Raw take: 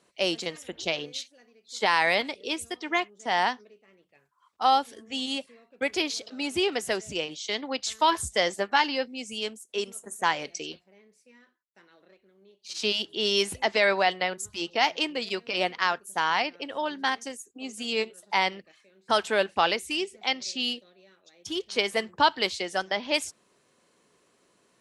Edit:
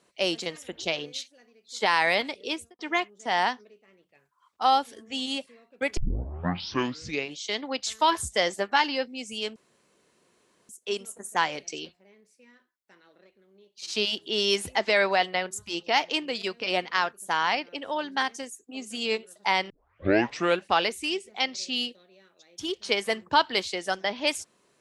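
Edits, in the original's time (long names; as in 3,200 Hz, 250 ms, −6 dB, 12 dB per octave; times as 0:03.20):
0:02.50–0:02.79: fade out and dull
0:05.97: tape start 1.41 s
0:09.56: splice in room tone 1.13 s
0:18.57: tape start 0.93 s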